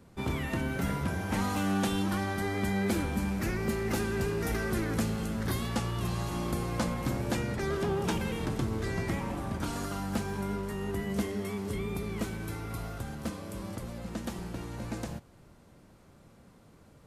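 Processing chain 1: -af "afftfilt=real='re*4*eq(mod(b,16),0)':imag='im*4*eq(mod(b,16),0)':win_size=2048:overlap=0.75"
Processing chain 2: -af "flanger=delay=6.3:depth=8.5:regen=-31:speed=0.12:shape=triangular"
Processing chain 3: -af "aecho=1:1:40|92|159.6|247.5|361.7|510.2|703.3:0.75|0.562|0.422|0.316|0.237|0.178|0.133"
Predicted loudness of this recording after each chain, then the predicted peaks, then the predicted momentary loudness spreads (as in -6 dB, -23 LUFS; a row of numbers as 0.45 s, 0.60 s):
-38.5 LUFS, -36.5 LUFS, -29.0 LUFS; -20.5 dBFS, -22.0 dBFS, -14.0 dBFS; 11 LU, 9 LU, 9 LU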